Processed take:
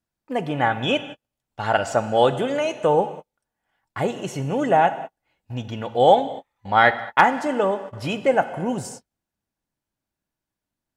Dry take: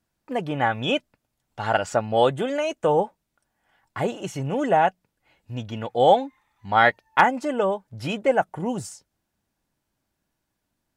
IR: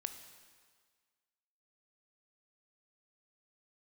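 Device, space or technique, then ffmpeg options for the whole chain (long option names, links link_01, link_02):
keyed gated reverb: -filter_complex "[0:a]asplit=3[link_01][link_02][link_03];[1:a]atrim=start_sample=2205[link_04];[link_02][link_04]afir=irnorm=-1:irlink=0[link_05];[link_03]apad=whole_len=483525[link_06];[link_05][link_06]sidechaingate=range=-48dB:threshold=-42dB:ratio=16:detection=peak,volume=8.5dB[link_07];[link_01][link_07]amix=inputs=2:normalize=0,volume=-8dB"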